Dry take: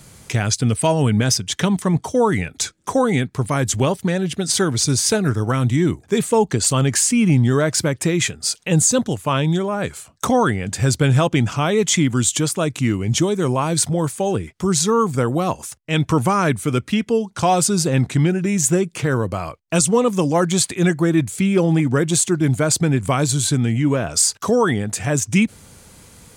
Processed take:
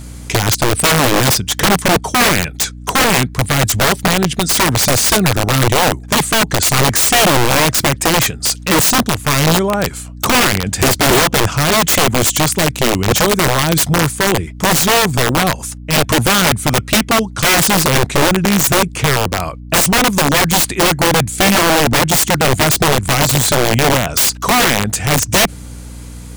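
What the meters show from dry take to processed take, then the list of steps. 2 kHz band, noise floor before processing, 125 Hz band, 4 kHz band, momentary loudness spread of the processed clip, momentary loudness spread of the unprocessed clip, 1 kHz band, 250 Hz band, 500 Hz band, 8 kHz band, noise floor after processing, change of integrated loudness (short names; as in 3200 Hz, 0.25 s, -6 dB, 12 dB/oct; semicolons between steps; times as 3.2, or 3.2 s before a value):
+12.0 dB, -50 dBFS, +1.5 dB, +11.0 dB, 5 LU, 6 LU, +8.5 dB, +1.5 dB, +3.5 dB, +5.5 dB, -31 dBFS, +6.0 dB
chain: hum 60 Hz, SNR 19 dB; wrapped overs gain 13 dB; gain +6.5 dB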